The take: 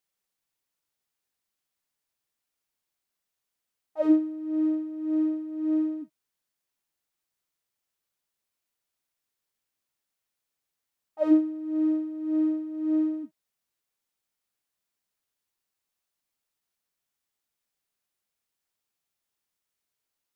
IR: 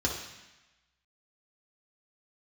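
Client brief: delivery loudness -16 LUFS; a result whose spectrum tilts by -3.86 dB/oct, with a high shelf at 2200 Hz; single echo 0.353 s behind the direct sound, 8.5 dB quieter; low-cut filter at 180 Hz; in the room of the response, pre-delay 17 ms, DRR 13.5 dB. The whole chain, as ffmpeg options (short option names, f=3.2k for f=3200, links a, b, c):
-filter_complex "[0:a]highpass=180,highshelf=f=2.2k:g=3.5,aecho=1:1:353:0.376,asplit=2[a][b];[1:a]atrim=start_sample=2205,adelay=17[c];[b][c]afir=irnorm=-1:irlink=0,volume=-21.5dB[d];[a][d]amix=inputs=2:normalize=0,volume=8.5dB"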